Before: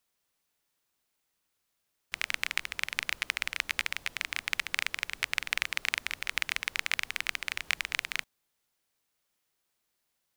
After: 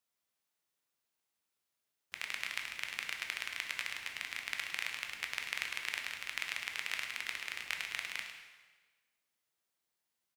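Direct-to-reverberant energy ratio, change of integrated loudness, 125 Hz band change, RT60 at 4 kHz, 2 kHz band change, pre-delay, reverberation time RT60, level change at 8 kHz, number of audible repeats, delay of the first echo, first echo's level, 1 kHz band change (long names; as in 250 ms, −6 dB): 2.0 dB, −6.5 dB, can't be measured, 1.2 s, −6.5 dB, 6 ms, 1.3 s, −6.5 dB, 1, 105 ms, −10.5 dB, −6.5 dB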